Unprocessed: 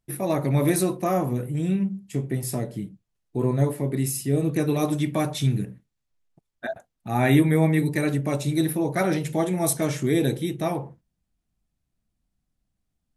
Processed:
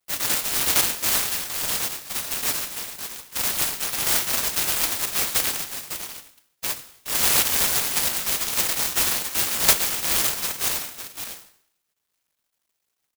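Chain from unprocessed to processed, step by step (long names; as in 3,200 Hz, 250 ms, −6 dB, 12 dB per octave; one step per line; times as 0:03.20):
each half-wave held at its own peak
Chebyshev high-pass filter 2,500 Hz, order 6
comb filter 4.5 ms, depth 75%
on a send: single-tap delay 557 ms −12 dB
on the sum: dense smooth reverb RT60 1.1 s, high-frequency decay 0.6×, DRR 7.5 dB
in parallel at −1 dB: downward compressor, threshold −39 dBFS, peak gain reduction 21 dB
on the sum: converter with an unsteady clock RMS 0.14 ms
level +5.5 dB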